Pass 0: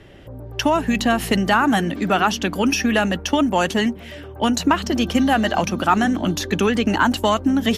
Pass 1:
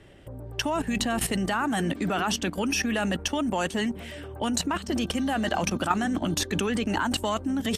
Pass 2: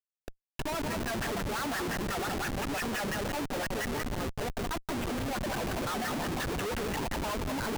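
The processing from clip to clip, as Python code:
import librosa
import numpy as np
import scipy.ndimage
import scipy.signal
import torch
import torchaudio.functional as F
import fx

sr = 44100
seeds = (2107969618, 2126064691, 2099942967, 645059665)

y1 = fx.peak_eq(x, sr, hz=8500.0, db=13.0, octaves=0.24)
y1 = fx.level_steps(y1, sr, step_db=13)
y2 = fx.echo_multitap(y1, sr, ms=(175, 196, 244, 614, 800), db=(-8.5, -17.0, -18.5, -8.5, -12.5))
y2 = fx.wah_lfo(y2, sr, hz=5.8, low_hz=380.0, high_hz=2000.0, q=2.5)
y2 = fx.schmitt(y2, sr, flips_db=-39.5)
y2 = y2 * librosa.db_to_amplitude(3.0)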